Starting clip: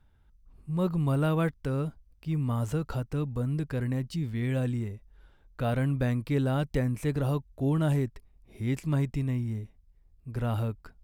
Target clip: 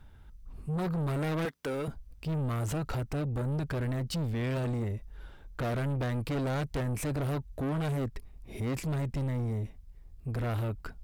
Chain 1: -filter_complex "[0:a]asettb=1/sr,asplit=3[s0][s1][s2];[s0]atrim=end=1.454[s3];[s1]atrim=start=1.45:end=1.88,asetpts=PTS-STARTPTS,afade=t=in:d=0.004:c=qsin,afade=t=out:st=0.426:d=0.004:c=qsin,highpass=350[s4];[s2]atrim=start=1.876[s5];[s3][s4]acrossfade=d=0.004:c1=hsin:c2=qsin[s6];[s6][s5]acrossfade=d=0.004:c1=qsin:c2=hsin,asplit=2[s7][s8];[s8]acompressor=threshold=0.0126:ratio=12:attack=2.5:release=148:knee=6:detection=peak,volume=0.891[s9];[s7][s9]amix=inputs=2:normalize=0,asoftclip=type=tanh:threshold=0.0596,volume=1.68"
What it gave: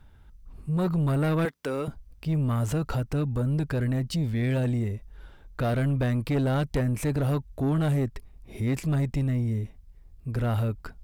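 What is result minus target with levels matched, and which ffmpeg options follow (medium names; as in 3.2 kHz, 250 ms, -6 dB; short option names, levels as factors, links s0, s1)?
saturation: distortion -7 dB
-filter_complex "[0:a]asettb=1/sr,asplit=3[s0][s1][s2];[s0]atrim=end=1.454[s3];[s1]atrim=start=1.45:end=1.88,asetpts=PTS-STARTPTS,afade=t=in:d=0.004:c=qsin,afade=t=out:st=0.426:d=0.004:c=qsin,highpass=350[s4];[s2]atrim=start=1.876[s5];[s3][s4]acrossfade=d=0.004:c1=hsin:c2=qsin[s6];[s6][s5]acrossfade=d=0.004:c1=qsin:c2=hsin,asplit=2[s7][s8];[s8]acompressor=threshold=0.0126:ratio=12:attack=2.5:release=148:knee=6:detection=peak,volume=0.891[s9];[s7][s9]amix=inputs=2:normalize=0,asoftclip=type=tanh:threshold=0.0211,volume=1.68"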